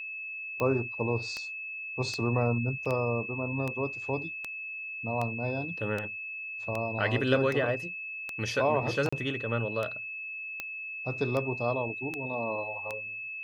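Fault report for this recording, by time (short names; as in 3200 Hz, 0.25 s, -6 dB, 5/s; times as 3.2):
tick 78 rpm -19 dBFS
tone 2600 Hz -36 dBFS
2.85–2.86 gap 6.1 ms
9.09–9.12 gap 35 ms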